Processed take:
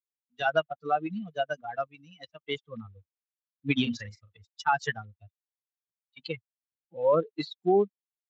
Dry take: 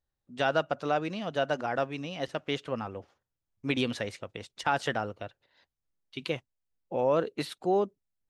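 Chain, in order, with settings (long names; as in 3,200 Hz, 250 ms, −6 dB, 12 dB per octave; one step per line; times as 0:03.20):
spectral dynamics exaggerated over time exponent 3
0:01.87–0:02.48: low-shelf EQ 440 Hz −7.5 dB
0:03.80–0:04.38: double-tracking delay 38 ms −10 dB
0:05.01–0:06.19: downward compressor 8 to 1, threshold −51 dBFS, peak gain reduction 5.5 dB
level +6.5 dB
Speex 34 kbit/s 16,000 Hz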